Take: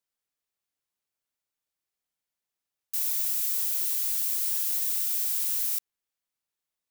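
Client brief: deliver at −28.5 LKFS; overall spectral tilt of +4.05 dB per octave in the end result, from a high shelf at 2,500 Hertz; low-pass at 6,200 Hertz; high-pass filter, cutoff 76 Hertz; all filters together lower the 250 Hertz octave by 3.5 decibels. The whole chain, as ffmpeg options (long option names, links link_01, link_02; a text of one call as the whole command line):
ffmpeg -i in.wav -af "highpass=76,lowpass=6200,equalizer=frequency=250:width_type=o:gain=-5,highshelf=frequency=2500:gain=4,volume=7.5dB" out.wav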